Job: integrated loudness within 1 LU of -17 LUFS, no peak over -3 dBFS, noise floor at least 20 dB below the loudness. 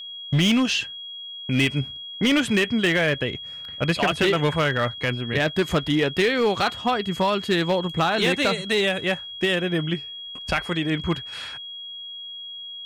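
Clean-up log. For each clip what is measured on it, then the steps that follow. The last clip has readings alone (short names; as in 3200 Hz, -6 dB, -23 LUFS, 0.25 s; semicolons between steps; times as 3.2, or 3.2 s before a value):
clipped 1.1%; flat tops at -14.5 dBFS; steady tone 3300 Hz; tone level -34 dBFS; loudness -23.0 LUFS; peak -14.5 dBFS; loudness target -17.0 LUFS
-> clip repair -14.5 dBFS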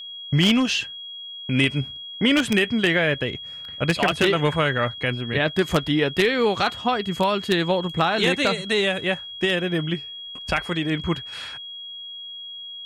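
clipped 0.0%; steady tone 3300 Hz; tone level -34 dBFS
-> notch 3300 Hz, Q 30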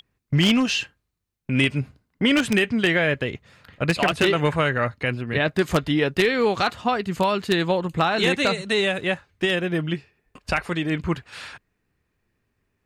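steady tone none; loudness -22.5 LUFS; peak -5.5 dBFS; loudness target -17.0 LUFS
-> gain +5.5 dB; limiter -3 dBFS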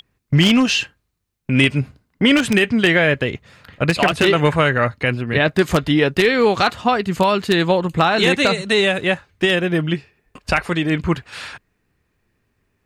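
loudness -17.0 LUFS; peak -3.0 dBFS; noise floor -70 dBFS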